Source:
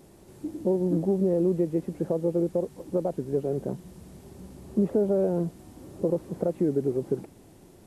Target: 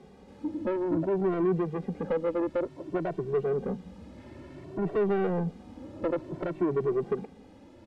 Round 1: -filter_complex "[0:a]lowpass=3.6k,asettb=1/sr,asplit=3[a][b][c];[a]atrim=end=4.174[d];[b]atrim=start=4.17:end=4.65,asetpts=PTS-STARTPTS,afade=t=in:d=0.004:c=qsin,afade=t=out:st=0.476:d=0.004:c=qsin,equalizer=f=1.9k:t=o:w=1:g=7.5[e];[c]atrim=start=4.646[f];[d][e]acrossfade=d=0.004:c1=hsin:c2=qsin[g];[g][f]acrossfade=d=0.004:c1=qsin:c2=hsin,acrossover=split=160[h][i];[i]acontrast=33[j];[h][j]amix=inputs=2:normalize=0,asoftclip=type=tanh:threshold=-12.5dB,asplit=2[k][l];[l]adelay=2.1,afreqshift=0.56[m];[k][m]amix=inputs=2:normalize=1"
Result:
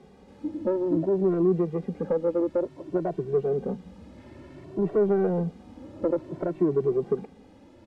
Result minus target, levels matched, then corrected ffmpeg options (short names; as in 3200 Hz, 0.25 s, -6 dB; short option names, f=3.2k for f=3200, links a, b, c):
soft clip: distortion -10 dB
-filter_complex "[0:a]lowpass=3.6k,asettb=1/sr,asplit=3[a][b][c];[a]atrim=end=4.174[d];[b]atrim=start=4.17:end=4.65,asetpts=PTS-STARTPTS,afade=t=in:d=0.004:c=qsin,afade=t=out:st=0.476:d=0.004:c=qsin,equalizer=f=1.9k:t=o:w=1:g=7.5[e];[c]atrim=start=4.646[f];[d][e]acrossfade=d=0.004:c1=hsin:c2=qsin[g];[g][f]acrossfade=d=0.004:c1=qsin:c2=hsin,acrossover=split=160[h][i];[i]acontrast=33[j];[h][j]amix=inputs=2:normalize=0,asoftclip=type=tanh:threshold=-20.5dB,asplit=2[k][l];[l]adelay=2.1,afreqshift=0.56[m];[k][m]amix=inputs=2:normalize=1"